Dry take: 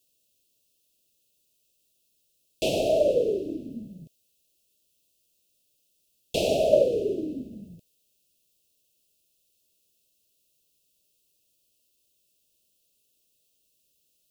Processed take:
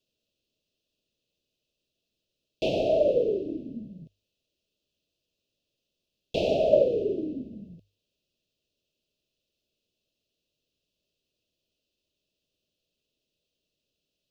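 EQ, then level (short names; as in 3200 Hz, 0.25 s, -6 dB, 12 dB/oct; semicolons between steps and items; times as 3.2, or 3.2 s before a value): air absorption 240 m; high shelf 6900 Hz +8 dB; notches 50/100 Hz; 0.0 dB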